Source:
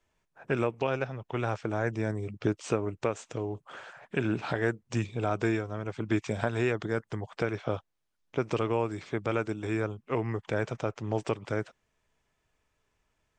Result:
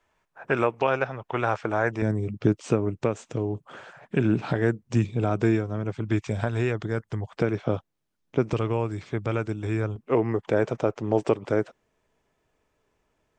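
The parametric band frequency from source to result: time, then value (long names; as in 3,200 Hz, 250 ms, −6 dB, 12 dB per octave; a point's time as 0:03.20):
parametric band +9 dB 2.7 octaves
1,100 Hz
from 0:02.02 170 Hz
from 0:05.96 62 Hz
from 0:07.38 200 Hz
from 0:08.53 71 Hz
from 0:09.96 400 Hz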